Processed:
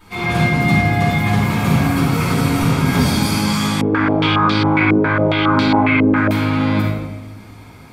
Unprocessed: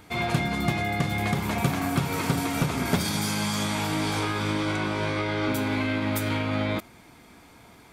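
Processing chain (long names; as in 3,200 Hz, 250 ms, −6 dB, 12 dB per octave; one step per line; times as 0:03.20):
rectangular room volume 610 cubic metres, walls mixed, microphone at 9.9 metres
0:03.81–0:06.31: low-pass on a step sequencer 7.3 Hz 450–4,300 Hz
level −8.5 dB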